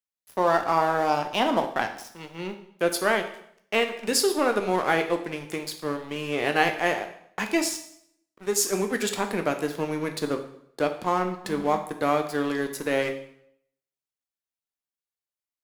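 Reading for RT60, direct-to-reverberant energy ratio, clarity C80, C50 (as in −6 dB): 0.70 s, 6.0 dB, 13.0 dB, 10.0 dB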